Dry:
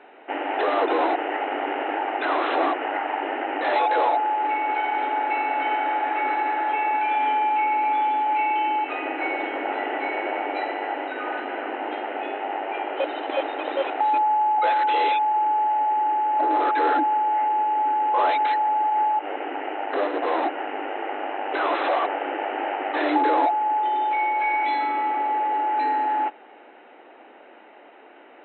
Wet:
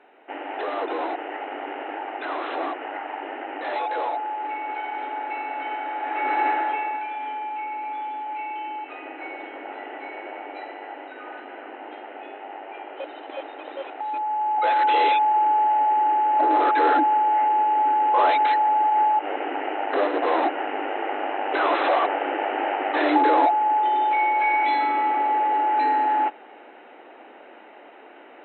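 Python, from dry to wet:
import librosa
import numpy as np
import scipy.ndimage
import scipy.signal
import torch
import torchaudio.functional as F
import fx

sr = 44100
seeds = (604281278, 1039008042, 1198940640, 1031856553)

y = fx.gain(x, sr, db=fx.line((5.94, -6.0), (6.46, 3.0), (7.13, -9.0), (14.03, -9.0), (14.84, 2.0)))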